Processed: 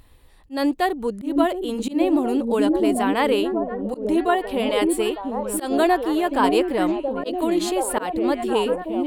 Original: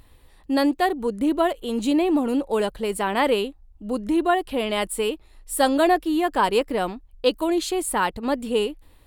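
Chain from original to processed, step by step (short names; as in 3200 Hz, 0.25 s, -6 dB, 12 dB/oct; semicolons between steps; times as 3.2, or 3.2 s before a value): delay with a stepping band-pass 0.721 s, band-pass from 270 Hz, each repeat 0.7 oct, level 0 dB; auto swell 0.153 s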